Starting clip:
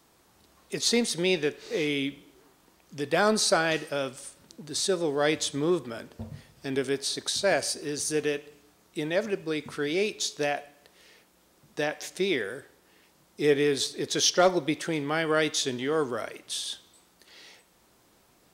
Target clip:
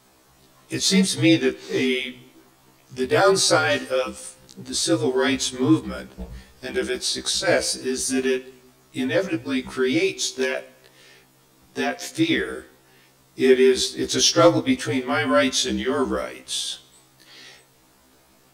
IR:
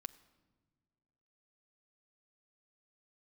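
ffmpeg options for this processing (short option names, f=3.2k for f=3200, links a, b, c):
-af "afreqshift=-46,afftfilt=real='re*1.73*eq(mod(b,3),0)':imag='im*1.73*eq(mod(b,3),0)':win_size=2048:overlap=0.75,volume=8dB"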